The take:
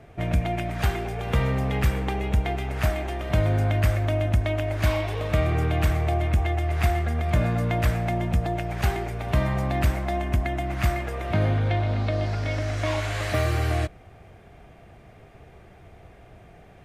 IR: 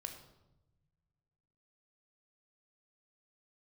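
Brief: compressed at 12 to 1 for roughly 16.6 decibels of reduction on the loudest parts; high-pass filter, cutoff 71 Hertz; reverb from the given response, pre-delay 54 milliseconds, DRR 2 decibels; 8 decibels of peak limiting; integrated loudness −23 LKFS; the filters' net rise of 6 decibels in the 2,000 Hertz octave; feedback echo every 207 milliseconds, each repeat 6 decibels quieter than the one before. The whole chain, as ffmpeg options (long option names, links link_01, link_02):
-filter_complex "[0:a]highpass=71,equalizer=frequency=2000:width_type=o:gain=7,acompressor=threshold=-35dB:ratio=12,alimiter=level_in=5.5dB:limit=-24dB:level=0:latency=1,volume=-5.5dB,aecho=1:1:207|414|621|828|1035|1242:0.501|0.251|0.125|0.0626|0.0313|0.0157,asplit=2[link_01][link_02];[1:a]atrim=start_sample=2205,adelay=54[link_03];[link_02][link_03]afir=irnorm=-1:irlink=0,volume=1dB[link_04];[link_01][link_04]amix=inputs=2:normalize=0,volume=13.5dB"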